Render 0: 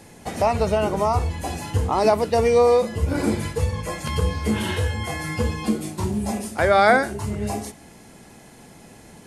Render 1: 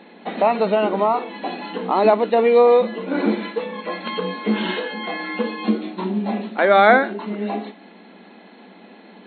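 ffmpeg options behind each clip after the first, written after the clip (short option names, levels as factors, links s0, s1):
-af "afftfilt=real='re*between(b*sr/4096,180,4300)':imag='im*between(b*sr/4096,180,4300)':win_size=4096:overlap=0.75,volume=1.41"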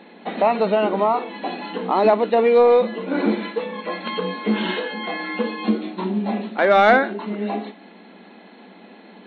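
-af "asoftclip=type=tanh:threshold=0.631"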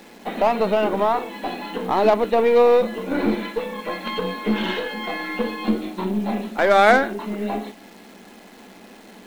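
-af "aeval=exprs='0.562*(cos(1*acos(clip(val(0)/0.562,-1,1)))-cos(1*PI/2))+0.126*(cos(3*acos(clip(val(0)/0.562,-1,1)))-cos(3*PI/2))+0.0447*(cos(5*acos(clip(val(0)/0.562,-1,1)))-cos(5*PI/2))+0.0158*(cos(8*acos(clip(val(0)/0.562,-1,1)))-cos(8*PI/2))':c=same,acrusher=bits=9:dc=4:mix=0:aa=0.000001,volume=1.33"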